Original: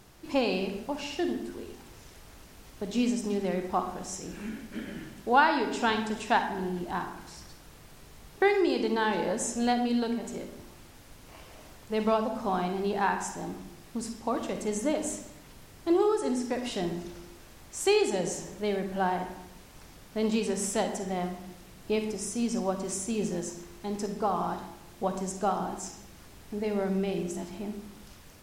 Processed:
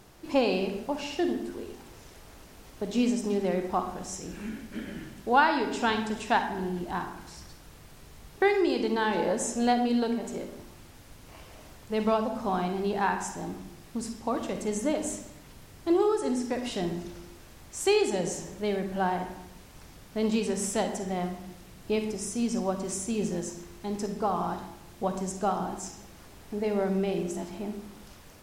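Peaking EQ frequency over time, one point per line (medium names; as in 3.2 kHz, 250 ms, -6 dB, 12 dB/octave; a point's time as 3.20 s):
peaking EQ +3 dB 2.2 oct
530 Hz
from 3.74 s 66 Hz
from 9.15 s 550 Hz
from 10.63 s 83 Hz
from 25.99 s 660 Hz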